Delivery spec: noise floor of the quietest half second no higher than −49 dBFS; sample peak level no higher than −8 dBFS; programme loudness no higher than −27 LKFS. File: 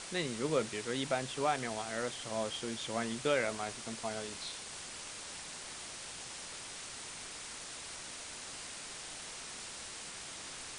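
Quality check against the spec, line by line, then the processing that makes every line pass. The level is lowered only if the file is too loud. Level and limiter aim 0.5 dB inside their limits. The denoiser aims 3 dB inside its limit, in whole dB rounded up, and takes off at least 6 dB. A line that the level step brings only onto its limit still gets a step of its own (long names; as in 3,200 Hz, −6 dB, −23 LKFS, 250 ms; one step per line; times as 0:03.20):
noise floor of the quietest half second −46 dBFS: out of spec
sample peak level −18.0 dBFS: in spec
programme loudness −38.5 LKFS: in spec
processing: broadband denoise 6 dB, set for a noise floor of −46 dBFS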